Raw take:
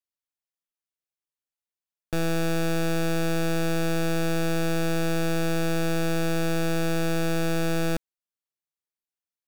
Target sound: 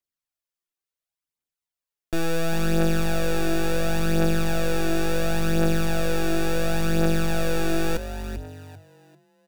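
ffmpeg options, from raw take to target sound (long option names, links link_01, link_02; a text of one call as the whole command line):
ffmpeg -i in.wav -filter_complex "[0:a]asplit=5[link_01][link_02][link_03][link_04][link_05];[link_02]adelay=393,afreqshift=48,volume=-10.5dB[link_06];[link_03]adelay=786,afreqshift=96,volume=-20.1dB[link_07];[link_04]adelay=1179,afreqshift=144,volume=-29.8dB[link_08];[link_05]adelay=1572,afreqshift=192,volume=-39.4dB[link_09];[link_01][link_06][link_07][link_08][link_09]amix=inputs=5:normalize=0,aphaser=in_gain=1:out_gain=1:delay=3:decay=0.47:speed=0.71:type=triangular" out.wav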